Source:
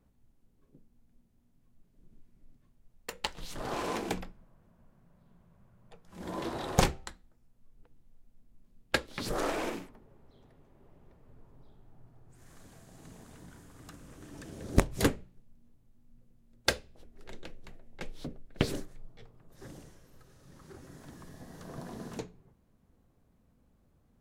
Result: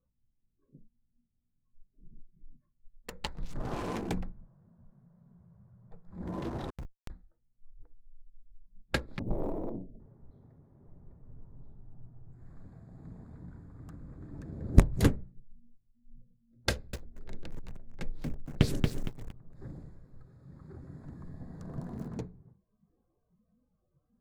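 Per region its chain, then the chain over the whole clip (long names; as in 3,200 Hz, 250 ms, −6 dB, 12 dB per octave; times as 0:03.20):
0:06.70–0:07.10: comparator with hysteresis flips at −21 dBFS + downward compressor 8 to 1, threshold −45 dBFS
0:09.19–0:10.00: linear-phase brick-wall band-stop 720–12,000 Hz + highs frequency-modulated by the lows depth 0.68 ms
0:16.70–0:22.08: high-shelf EQ 3,300 Hz +6.5 dB + feedback echo at a low word length 231 ms, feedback 35%, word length 7 bits, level −3 dB
whole clip: adaptive Wiener filter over 15 samples; noise reduction from a noise print of the clip's start 18 dB; bass and treble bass +11 dB, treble −1 dB; level −3.5 dB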